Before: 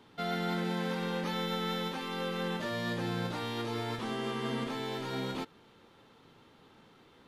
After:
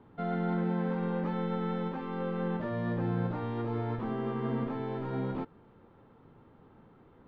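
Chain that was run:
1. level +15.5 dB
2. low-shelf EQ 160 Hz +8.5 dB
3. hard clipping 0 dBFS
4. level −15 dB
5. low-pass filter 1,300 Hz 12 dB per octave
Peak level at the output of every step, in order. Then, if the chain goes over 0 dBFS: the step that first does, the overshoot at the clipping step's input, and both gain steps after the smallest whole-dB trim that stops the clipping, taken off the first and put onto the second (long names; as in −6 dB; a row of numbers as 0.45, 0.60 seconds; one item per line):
−7.0, −5.0, −5.0, −20.0, −21.0 dBFS
no step passes full scale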